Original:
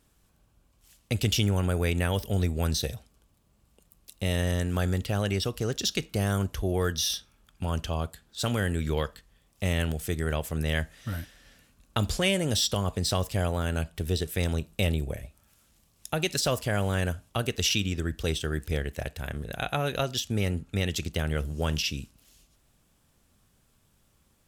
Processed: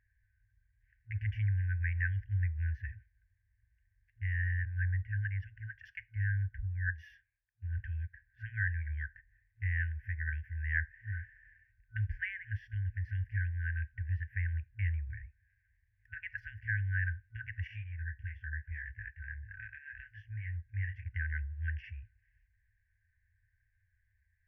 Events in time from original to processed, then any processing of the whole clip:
4.65–7.79 s: three bands expanded up and down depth 100%
17.67–21.06 s: detune thickener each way 27 cents
whole clip: elliptic low-pass 1.9 kHz, stop band 50 dB; bass shelf 86 Hz -9.5 dB; FFT band-reject 110–1500 Hz; trim +1.5 dB

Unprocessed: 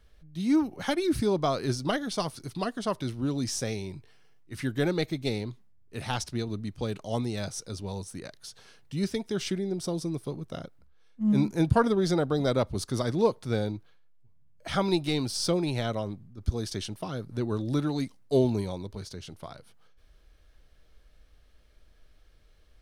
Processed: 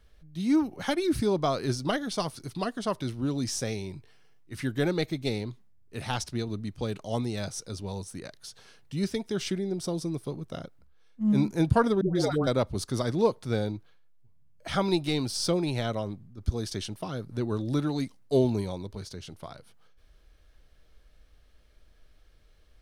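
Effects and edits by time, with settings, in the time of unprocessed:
12.01–12.47 s: phase dispersion highs, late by 142 ms, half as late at 630 Hz

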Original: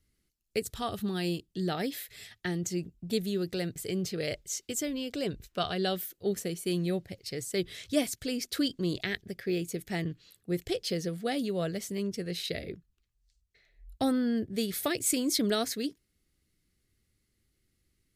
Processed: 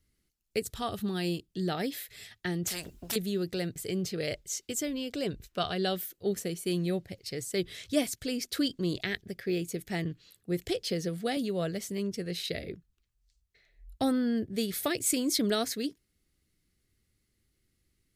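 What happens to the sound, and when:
2.67–3.16 s: spectrum-flattening compressor 4:1
10.63–11.37 s: three bands compressed up and down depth 40%

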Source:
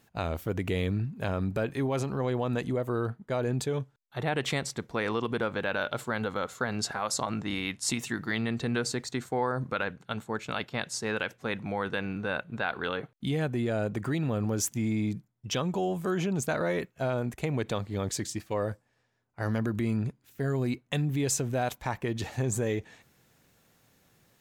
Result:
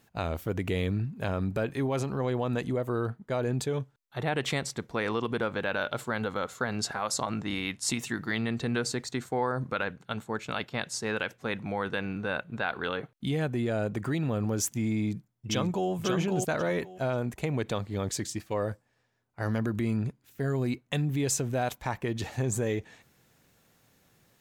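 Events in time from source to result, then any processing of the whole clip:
14.95–15.90 s: echo throw 540 ms, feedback 20%, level -4 dB

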